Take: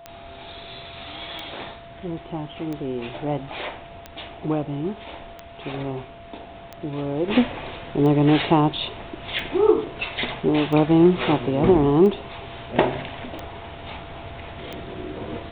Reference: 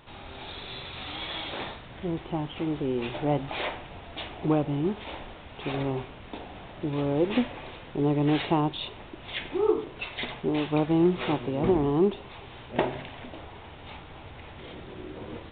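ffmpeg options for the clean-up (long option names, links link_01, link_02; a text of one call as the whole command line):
ffmpeg -i in.wav -af "adeclick=threshold=4,bandreject=frequency=680:width=30,asetnsamples=nb_out_samples=441:pad=0,asendcmd='7.28 volume volume -7dB',volume=0dB" out.wav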